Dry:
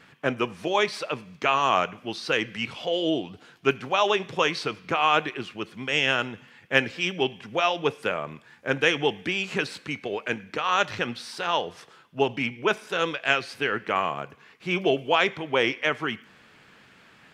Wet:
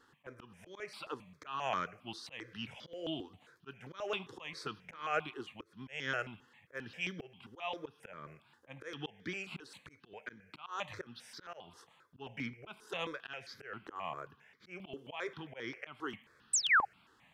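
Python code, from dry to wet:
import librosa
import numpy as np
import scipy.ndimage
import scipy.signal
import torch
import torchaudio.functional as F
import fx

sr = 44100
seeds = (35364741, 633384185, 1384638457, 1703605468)

y = fx.auto_swell(x, sr, attack_ms=231.0)
y = fx.spec_paint(y, sr, seeds[0], shape='fall', start_s=16.53, length_s=0.32, low_hz=750.0, high_hz=8800.0, level_db=-15.0)
y = fx.phaser_held(y, sr, hz=7.5, low_hz=630.0, high_hz=2700.0)
y = F.gain(torch.from_numpy(y), -8.5).numpy()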